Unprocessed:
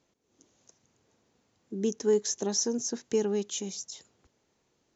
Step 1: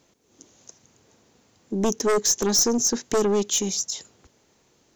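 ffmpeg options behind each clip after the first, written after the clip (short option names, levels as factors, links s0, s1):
-af "aeval=exprs='0.178*(cos(1*acos(clip(val(0)/0.178,-1,1)))-cos(1*PI/2))+0.0251*(cos(4*acos(clip(val(0)/0.178,-1,1)))-cos(4*PI/2))+0.0794*(cos(5*acos(clip(val(0)/0.178,-1,1)))-cos(5*PI/2))':c=same,highshelf=f=6300:g=5.5"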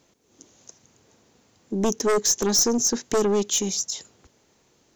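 -af anull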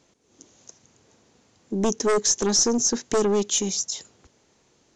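-af "aresample=22050,aresample=44100"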